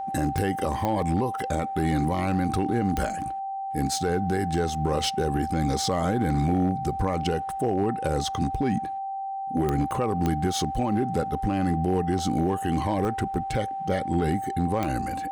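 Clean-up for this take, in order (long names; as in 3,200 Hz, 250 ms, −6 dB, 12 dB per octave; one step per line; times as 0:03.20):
clipped peaks rebuilt −17 dBFS
click removal
notch filter 780 Hz, Q 30
repair the gap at 0:00.59/0:01.02/0:09.91/0:12.19/0:13.05/0:14.85, 1.2 ms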